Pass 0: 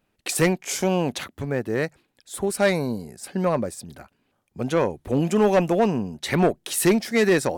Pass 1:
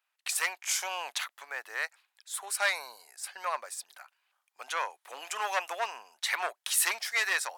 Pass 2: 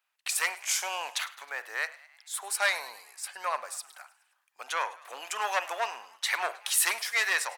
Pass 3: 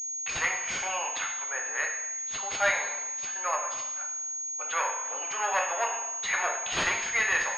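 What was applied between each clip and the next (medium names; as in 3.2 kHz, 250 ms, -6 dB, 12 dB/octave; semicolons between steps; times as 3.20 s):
high-pass 930 Hz 24 dB/octave; level rider gain up to 4.5 dB; trim -5.5 dB
frequency-shifting echo 105 ms, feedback 56%, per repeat +64 Hz, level -19.5 dB; on a send at -15 dB: reverberation, pre-delay 43 ms; on the sum: trim +1.5 dB
two-slope reverb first 0.82 s, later 2.3 s, from -24 dB, DRR 0.5 dB; class-D stage that switches slowly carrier 6.6 kHz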